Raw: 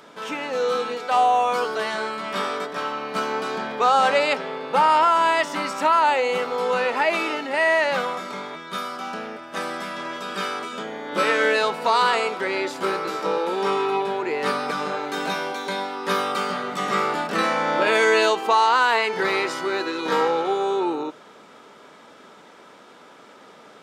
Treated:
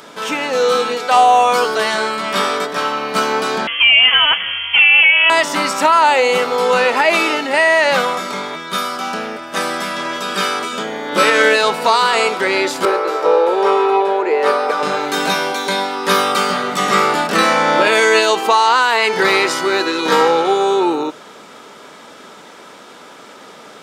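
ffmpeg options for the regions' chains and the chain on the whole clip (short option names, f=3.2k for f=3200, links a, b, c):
-filter_complex "[0:a]asettb=1/sr,asplit=3[a][b][c];[a]atrim=end=3.674[d];[b]atrim=start=3.67:end=5.3,asetpts=PTS-STARTPTS,afade=t=in:d=0.004:c=qsin,afade=t=out:st=1.626:d=0.004:c=qsin,highpass=f=500:p=1,aecho=1:1:6.5:0.42,atrim=end_sample=71883,lowpass=f=3.1k:t=q:w=0.5098,lowpass=f=3.1k:t=q:w=0.6013,lowpass=f=3.1k:t=q:w=0.9,lowpass=f=3.1k:t=q:w=2.563,afreqshift=-3600[e];[c]atrim=start=5.296[f];[d][e]acrossfade=d=0.004:c1=hsin:c2=qsin[g];[g][f]acrossfade=d=0.004:c1=qsin:c2=hsin,asettb=1/sr,asplit=3[h][i][j];[h]atrim=end=12.854[k];[i]atrim=start=12.85:end=14.83,asetpts=PTS-STARTPTS,afade=t=in:d=0.004:c=qsin,afade=t=out:st=1.976:d=0.004:c=qsin,highpass=f=480:t=q:w=1.7,highshelf=f=2.7k:g=-12[l];[j]atrim=start=14.826[m];[k][l]acrossfade=d=0.004:c1=hsin:c2=qsin[n];[n][m]acrossfade=d=0.004:c1=qsin:c2=hsin,highshelf=f=3.9k:g=7,alimiter=level_in=9dB:limit=-1dB:release=50:level=0:latency=1,volume=-1dB"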